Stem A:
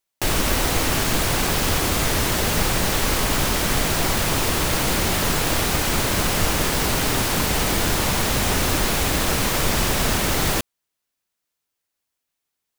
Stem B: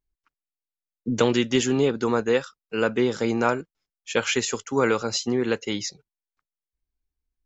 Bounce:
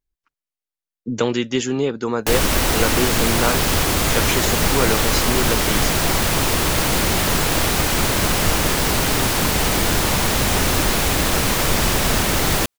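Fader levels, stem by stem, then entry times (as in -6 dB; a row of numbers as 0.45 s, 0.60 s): +2.5 dB, +0.5 dB; 2.05 s, 0.00 s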